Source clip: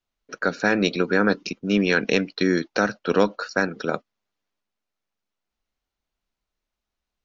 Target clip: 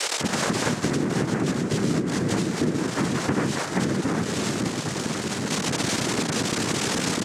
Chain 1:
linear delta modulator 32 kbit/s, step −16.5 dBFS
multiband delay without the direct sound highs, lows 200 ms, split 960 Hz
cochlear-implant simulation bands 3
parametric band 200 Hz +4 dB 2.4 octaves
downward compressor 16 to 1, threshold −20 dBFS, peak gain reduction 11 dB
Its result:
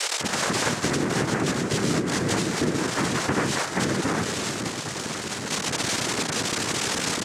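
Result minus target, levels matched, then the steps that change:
250 Hz band −2.5 dB
change: parametric band 200 Hz +11.5 dB 2.4 octaves

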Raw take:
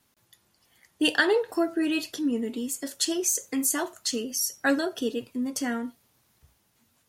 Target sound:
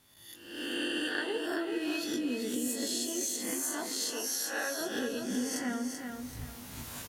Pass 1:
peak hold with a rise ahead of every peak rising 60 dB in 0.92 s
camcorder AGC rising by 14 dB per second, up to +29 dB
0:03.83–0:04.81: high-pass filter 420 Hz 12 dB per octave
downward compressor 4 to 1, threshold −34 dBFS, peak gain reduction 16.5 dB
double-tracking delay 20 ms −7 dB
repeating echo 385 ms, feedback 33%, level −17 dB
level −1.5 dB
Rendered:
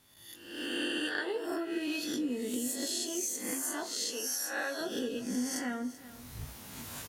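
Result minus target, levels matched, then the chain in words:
echo-to-direct −11 dB
peak hold with a rise ahead of every peak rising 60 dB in 0.92 s
camcorder AGC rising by 14 dB per second, up to +29 dB
0:03.83–0:04.81: high-pass filter 420 Hz 12 dB per octave
downward compressor 4 to 1, threshold −34 dBFS, peak gain reduction 16.5 dB
double-tracking delay 20 ms −7 dB
repeating echo 385 ms, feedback 33%, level −6 dB
level −1.5 dB

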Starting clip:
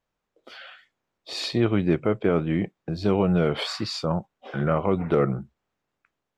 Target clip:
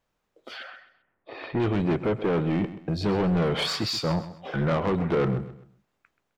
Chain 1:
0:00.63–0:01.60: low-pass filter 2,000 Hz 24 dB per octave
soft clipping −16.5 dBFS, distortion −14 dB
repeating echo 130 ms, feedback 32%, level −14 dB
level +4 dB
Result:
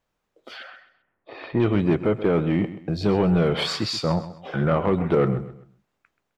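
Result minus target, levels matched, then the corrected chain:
soft clipping: distortion −7 dB
0:00.63–0:01.60: low-pass filter 2,000 Hz 24 dB per octave
soft clipping −24 dBFS, distortion −7 dB
repeating echo 130 ms, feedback 32%, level −14 dB
level +4 dB

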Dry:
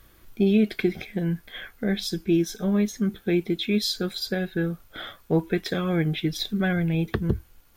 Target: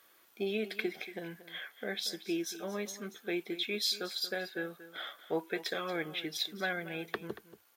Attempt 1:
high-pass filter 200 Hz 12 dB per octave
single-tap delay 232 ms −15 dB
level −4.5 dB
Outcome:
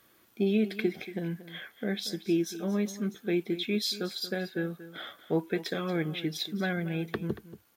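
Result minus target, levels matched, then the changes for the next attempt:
250 Hz band +5.0 dB
change: high-pass filter 510 Hz 12 dB per octave

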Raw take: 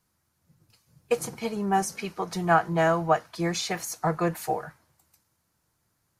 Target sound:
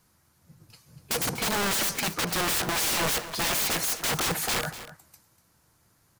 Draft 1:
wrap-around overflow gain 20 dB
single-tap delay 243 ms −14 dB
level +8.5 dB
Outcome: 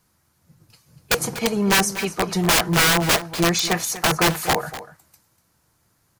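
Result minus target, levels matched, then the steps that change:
wrap-around overflow: distortion −18 dB
change: wrap-around overflow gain 30 dB

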